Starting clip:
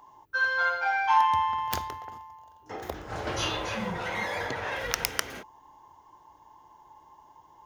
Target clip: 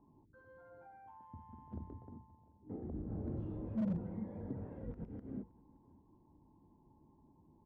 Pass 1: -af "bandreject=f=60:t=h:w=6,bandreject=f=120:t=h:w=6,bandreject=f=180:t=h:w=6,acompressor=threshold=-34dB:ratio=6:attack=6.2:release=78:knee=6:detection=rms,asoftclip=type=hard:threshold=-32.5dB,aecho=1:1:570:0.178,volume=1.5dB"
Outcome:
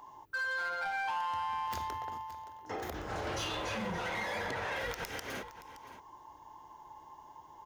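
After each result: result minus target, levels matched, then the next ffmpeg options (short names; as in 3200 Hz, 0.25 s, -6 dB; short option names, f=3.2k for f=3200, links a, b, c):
250 Hz band -12.0 dB; echo-to-direct +10 dB
-af "bandreject=f=60:t=h:w=6,bandreject=f=120:t=h:w=6,bandreject=f=180:t=h:w=6,acompressor=threshold=-34dB:ratio=6:attack=6.2:release=78:knee=6:detection=rms,lowpass=f=230:t=q:w=2.4,asoftclip=type=hard:threshold=-32.5dB,aecho=1:1:570:0.178,volume=1.5dB"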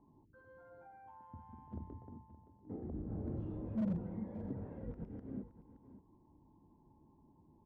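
echo-to-direct +10 dB
-af "bandreject=f=60:t=h:w=6,bandreject=f=120:t=h:w=6,bandreject=f=180:t=h:w=6,acompressor=threshold=-34dB:ratio=6:attack=6.2:release=78:knee=6:detection=rms,lowpass=f=230:t=q:w=2.4,asoftclip=type=hard:threshold=-32.5dB,aecho=1:1:570:0.0562,volume=1.5dB"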